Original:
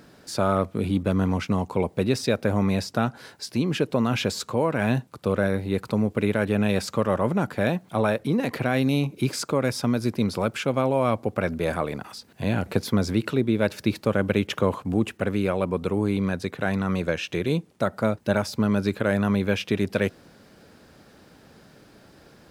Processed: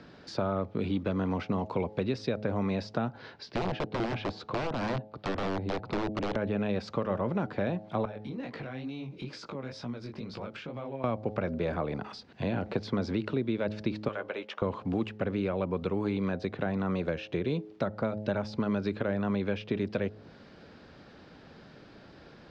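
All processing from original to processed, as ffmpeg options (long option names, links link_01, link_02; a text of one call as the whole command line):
ffmpeg -i in.wav -filter_complex "[0:a]asettb=1/sr,asplit=3[link_01][link_02][link_03];[link_01]atrim=end=3.174[link_04];[link_02]atrim=start=3.17:end=6.36,asetpts=PTS-STARTPTS,afade=type=in:duration=0.004:curve=qsin,afade=type=out:start_time=3.186:duration=0.004:curve=qsin,lowpass=4800,aeval=exprs='(mod(8.41*val(0)+1,2)-1)/8.41':channel_layout=same[link_05];[link_03]atrim=start=6.356[link_06];[link_04][link_05]acrossfade=duration=0.004:curve1=hsin:curve2=qsin[link_07];[link_07][link_06]acrossfade=duration=0.004:curve1=qsin:curve2=hsin,asettb=1/sr,asplit=3[link_08][link_09][link_10];[link_08]atrim=end=8.054[link_11];[link_09]atrim=start=8.05:end=11.04,asetpts=PTS-STARTPTS,afade=type=in:duration=0.004:curve=qsin,afade=type=out:start_time=2.986:duration=0.004:curve=qsin,acompressor=threshold=-32dB:ratio=5:attack=3.2:release=140:knee=1:detection=peak,flanger=delay=16.5:depth=6.5:speed=2.2[link_12];[link_10]atrim=start=11.036[link_13];[link_11][link_12]acrossfade=duration=0.004:curve1=hsin:curve2=qsin[link_14];[link_14][link_13]acrossfade=duration=0.004:curve1=qsin:curve2=hsin,asettb=1/sr,asplit=3[link_15][link_16][link_17];[link_15]atrim=end=14.084[link_18];[link_16]atrim=start=14.08:end=14.62,asetpts=PTS-STARTPTS,afade=type=in:duration=0.004:curve=qsin,afade=type=out:start_time=0.536:duration=0.004:curve=qsin,highpass=840,asplit=2[link_19][link_20];[link_20]adelay=13,volume=-8.5dB[link_21];[link_19][link_21]amix=inputs=2:normalize=0,atrim=end_sample=23814[link_22];[link_17]atrim=start=14.616[link_23];[link_18][link_22]acrossfade=duration=0.004:curve1=hsin:curve2=qsin[link_24];[link_24][link_23]acrossfade=duration=0.004:curve1=qsin:curve2=hsin,lowpass=frequency=4800:width=0.5412,lowpass=frequency=4800:width=1.3066,bandreject=frequency=106.4:width_type=h:width=4,bandreject=frequency=212.8:width_type=h:width=4,bandreject=frequency=319.2:width_type=h:width=4,bandreject=frequency=425.6:width_type=h:width=4,bandreject=frequency=532:width_type=h:width=4,bandreject=frequency=638.4:width_type=h:width=4,bandreject=frequency=744.8:width_type=h:width=4,bandreject=frequency=851.2:width_type=h:width=4,acrossover=split=230|1000[link_25][link_26][link_27];[link_25]acompressor=threshold=-35dB:ratio=4[link_28];[link_26]acompressor=threshold=-30dB:ratio=4[link_29];[link_27]acompressor=threshold=-43dB:ratio=4[link_30];[link_28][link_29][link_30]amix=inputs=3:normalize=0" out.wav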